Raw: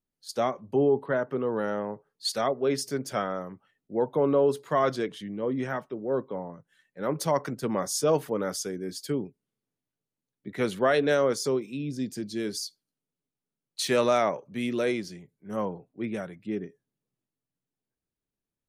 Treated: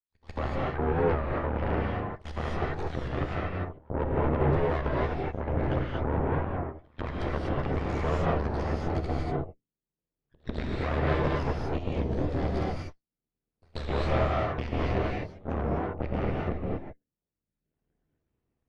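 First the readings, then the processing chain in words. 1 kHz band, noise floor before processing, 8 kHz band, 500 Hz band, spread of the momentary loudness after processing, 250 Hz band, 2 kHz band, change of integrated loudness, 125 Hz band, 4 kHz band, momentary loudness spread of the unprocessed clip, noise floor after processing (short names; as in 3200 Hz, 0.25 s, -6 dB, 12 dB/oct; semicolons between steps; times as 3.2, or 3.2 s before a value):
-0.5 dB, under -85 dBFS, under -20 dB, -4.5 dB, 9 LU, -1.5 dB, -1.0 dB, -2.0 dB, +9.0 dB, -9.0 dB, 12 LU, under -85 dBFS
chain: random spectral dropouts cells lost 32%; recorder AGC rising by 21 dB/s; notches 50/100/150/200/250 Hz; dynamic EQ 3400 Hz, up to +5 dB, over -45 dBFS, Q 0.88; in parallel at -1 dB: limiter -21.5 dBFS, peak gain reduction 13.5 dB; on the sum: ring modulator 38 Hz; soft clip -18.5 dBFS, distortion -15 dB; pre-echo 0.143 s -15 dB; added harmonics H 3 -9 dB, 4 -10 dB, 6 -27 dB, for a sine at -17 dBFS; tape spacing loss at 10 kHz 38 dB; non-linear reverb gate 0.27 s rising, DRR -4 dB; record warp 33 1/3 rpm, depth 160 cents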